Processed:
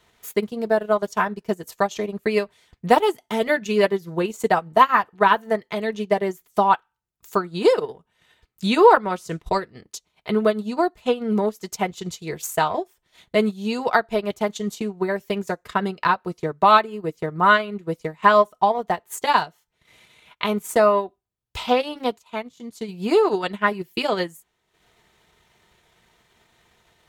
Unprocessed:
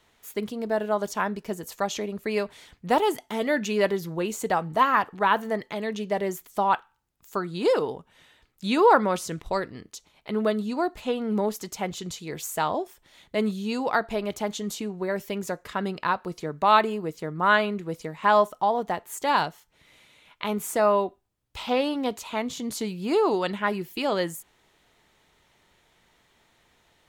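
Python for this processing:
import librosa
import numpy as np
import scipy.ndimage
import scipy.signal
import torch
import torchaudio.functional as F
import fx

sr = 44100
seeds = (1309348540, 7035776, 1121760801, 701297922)

y = fx.transient(x, sr, attack_db=5, sustain_db=-12)
y = fx.notch_comb(y, sr, f0_hz=280.0)
y = fx.upward_expand(y, sr, threshold_db=-38.0, expansion=1.5, at=(22.17, 22.88), fade=0.02)
y = y * 10.0 ** (4.0 / 20.0)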